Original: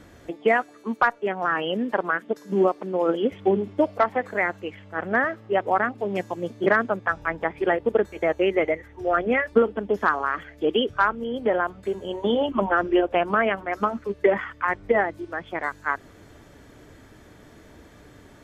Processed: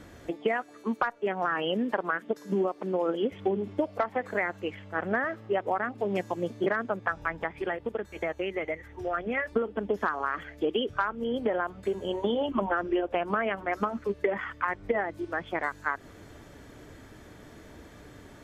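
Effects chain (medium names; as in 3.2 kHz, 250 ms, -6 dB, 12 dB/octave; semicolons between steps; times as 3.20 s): compression 6:1, threshold -24 dBFS, peak gain reduction 11.5 dB; 7.26–9.37 s: dynamic bell 420 Hz, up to -5 dB, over -39 dBFS, Q 0.71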